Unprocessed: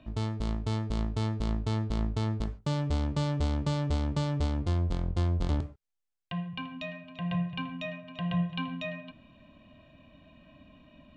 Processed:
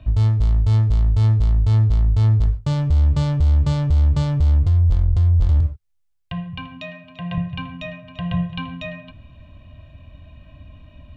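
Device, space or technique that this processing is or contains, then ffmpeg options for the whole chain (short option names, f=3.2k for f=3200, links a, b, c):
car stereo with a boomy subwoofer: -filter_complex "[0:a]asettb=1/sr,asplit=3[a][b][c];[a]atrim=end=6.814[d];[b]atrim=start=6.81:end=7.38,asetpts=PTS-STARTPTS,afade=t=in:d=0.004:c=qsin,afade=t=out:st=0.566:d=0.004:c=qsin,highpass=150[e];[c]atrim=start=7.376[f];[d][e]acrossfade=d=0.004:c1=hsin:c2=qsin[g];[g][f]acrossfade=d=0.004:c1=qsin:c2=hsin,lowshelf=f=140:t=q:w=1.5:g=13.5,alimiter=limit=-15.5dB:level=0:latency=1:release=42,volume=5dB"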